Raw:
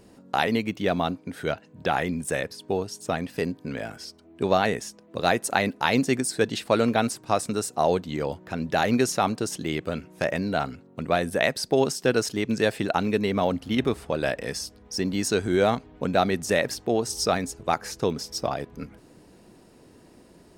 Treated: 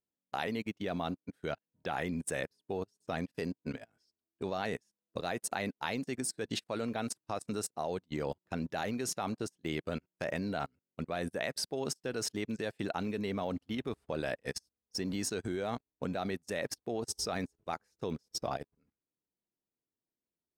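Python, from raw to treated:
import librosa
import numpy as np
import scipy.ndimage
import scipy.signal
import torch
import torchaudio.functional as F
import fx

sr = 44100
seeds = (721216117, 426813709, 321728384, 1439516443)

y = fx.dynamic_eq(x, sr, hz=5200.0, q=2.4, threshold_db=-53.0, ratio=4.0, max_db=4, at=(2.98, 4.84))
y = fx.level_steps(y, sr, step_db=16)
y = fx.upward_expand(y, sr, threshold_db=-53.0, expansion=2.5)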